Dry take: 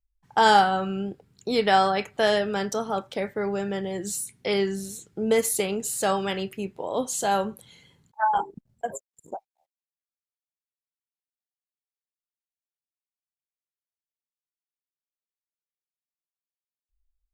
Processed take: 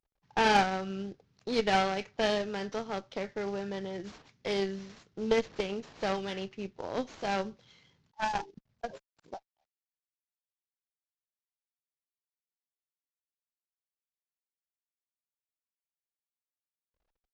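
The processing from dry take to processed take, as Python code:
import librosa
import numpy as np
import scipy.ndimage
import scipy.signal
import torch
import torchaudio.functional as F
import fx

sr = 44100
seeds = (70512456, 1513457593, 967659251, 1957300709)

y = fx.cvsd(x, sr, bps=32000)
y = fx.cheby_harmonics(y, sr, harmonics=(3, 6, 7, 8), levels_db=(-18, -23, -30, -35), full_scale_db=-7.0)
y = fx.dynamic_eq(y, sr, hz=1100.0, q=1.1, threshold_db=-39.0, ratio=4.0, max_db=-6)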